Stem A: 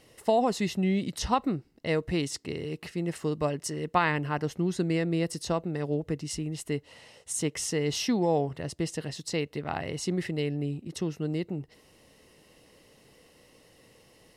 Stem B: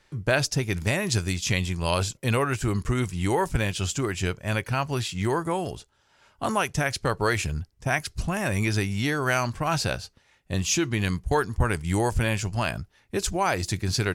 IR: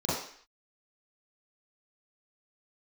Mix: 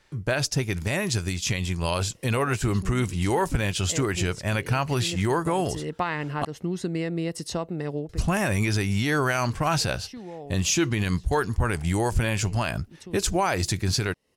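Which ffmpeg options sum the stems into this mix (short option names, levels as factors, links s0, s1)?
-filter_complex "[0:a]acompressor=threshold=0.0282:ratio=2,adelay=2050,volume=0.944,afade=t=out:st=7.94:d=0.29:silence=0.266073[s0];[1:a]volume=1.06,asplit=3[s1][s2][s3];[s1]atrim=end=6.45,asetpts=PTS-STARTPTS,afade=t=out:st=6.446:d=0.004:c=hsin[s4];[s2]atrim=start=6.45:end=8.09,asetpts=PTS-STARTPTS,volume=0[s5];[s3]atrim=start=8.09,asetpts=PTS-STARTPTS,afade=t=in:d=0.004:c=hsin[s6];[s4][s5][s6]concat=n=3:v=0:a=1,asplit=2[s7][s8];[s8]apad=whole_len=724000[s9];[s0][s9]sidechaincompress=threshold=0.0355:ratio=6:attack=5.8:release=322[s10];[s10][s7]amix=inputs=2:normalize=0,dynaudnorm=f=620:g=9:m=1.58,alimiter=limit=0.211:level=0:latency=1:release=79"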